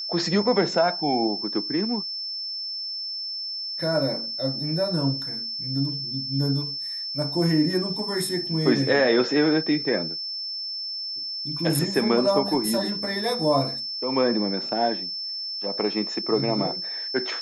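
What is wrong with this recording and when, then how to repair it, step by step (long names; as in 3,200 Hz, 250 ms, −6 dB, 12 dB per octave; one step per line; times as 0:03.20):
whistle 5,300 Hz −29 dBFS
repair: notch filter 5,300 Hz, Q 30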